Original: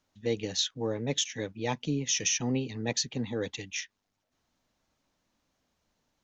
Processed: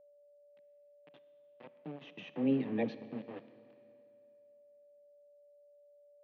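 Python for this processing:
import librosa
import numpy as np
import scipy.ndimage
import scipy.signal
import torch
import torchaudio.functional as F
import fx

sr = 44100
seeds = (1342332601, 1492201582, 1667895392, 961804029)

y = fx.doppler_pass(x, sr, speed_mps=12, closest_m=1.6, pass_at_s=2.63)
y = fx.dispersion(y, sr, late='lows', ms=62.0, hz=350.0)
y = np.where(np.abs(y) >= 10.0 ** (-42.0 / 20.0), y, 0.0)
y = fx.cabinet(y, sr, low_hz=160.0, low_slope=24, high_hz=2700.0, hz=(170.0, 270.0, 530.0, 1000.0, 1400.0, 2100.0), db=(4, 3, 3, -4, -10, -5))
y = y + 10.0 ** (-62.0 / 20.0) * np.sin(2.0 * np.pi * 580.0 * np.arange(len(y)) / sr)
y = fx.air_absorb(y, sr, metres=180.0)
y = fx.rev_schroeder(y, sr, rt60_s=2.5, comb_ms=28, drr_db=14.0)
y = y * 10.0 ** (3.0 / 20.0)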